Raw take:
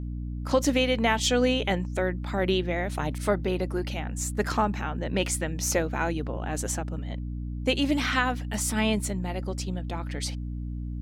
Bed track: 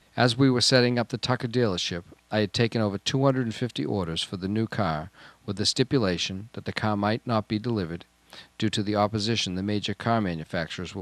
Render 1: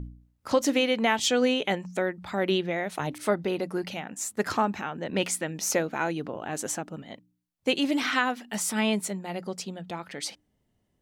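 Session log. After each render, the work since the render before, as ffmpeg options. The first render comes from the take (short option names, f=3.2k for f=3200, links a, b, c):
-af "bandreject=f=60:t=h:w=4,bandreject=f=120:t=h:w=4,bandreject=f=180:t=h:w=4,bandreject=f=240:t=h:w=4,bandreject=f=300:t=h:w=4"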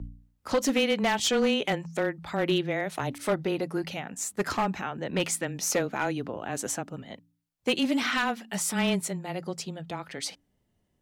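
-af "afreqshift=-14,asoftclip=type=hard:threshold=-19dB"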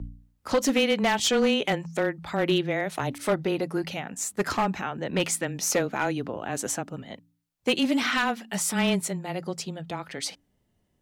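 -af "volume=2dB"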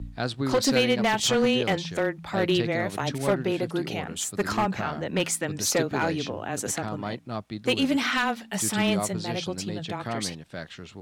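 -filter_complex "[1:a]volume=-8dB[a];[0:a][a]amix=inputs=2:normalize=0"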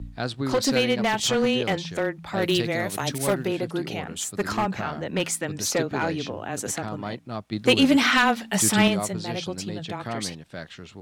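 -filter_complex "[0:a]asettb=1/sr,asplit=3[a][b][c];[a]atrim=end=2.424[d];[b]atrim=start=2.42:end=3.48,asetpts=PTS-STARTPTS,afade=t=in:d=0.004:c=qsin,afade=t=out:st=1.056:d=0.004:c=qsin,aemphasis=mode=production:type=50kf[e];[c]atrim=start=3.476[f];[d][e]acrossfade=d=0.004:c1=hsin:c2=qsin[g];[g][f]acrossfade=d=0.004:c1=qsin:c2=hsin,asettb=1/sr,asplit=3[h][i][j];[h]atrim=end=5.674[k];[i]atrim=start=5.67:end=6.25,asetpts=PTS-STARTPTS,afade=t=in:d=0.004:c=qsin,afade=t=out:st=0.576:d=0.004:c=qsin,highshelf=f=8.8k:g=-5.5[l];[j]atrim=start=6.246[m];[k][l]acrossfade=d=0.004:c1=hsin:c2=qsin[n];[n][m]acrossfade=d=0.004:c1=qsin:c2=hsin,asettb=1/sr,asplit=3[o][p][q];[o]atrim=end=7.524[r];[p]atrim=start=7.52:end=8.88,asetpts=PTS-STARTPTS,afade=t=in:d=0.004:c=qsin,afade=t=out:st=1.356:d=0.004:c=qsin,acontrast=53[s];[q]atrim=start=8.876[t];[r][s]acrossfade=d=0.004:c1=hsin:c2=qsin[u];[u][t]acrossfade=d=0.004:c1=qsin:c2=hsin"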